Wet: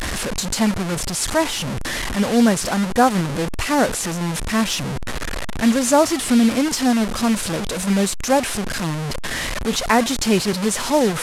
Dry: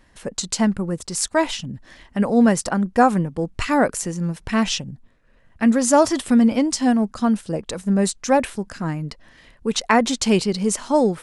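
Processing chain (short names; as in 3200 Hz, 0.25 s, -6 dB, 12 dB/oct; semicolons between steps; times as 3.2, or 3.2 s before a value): delta modulation 64 kbps, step -18.5 dBFS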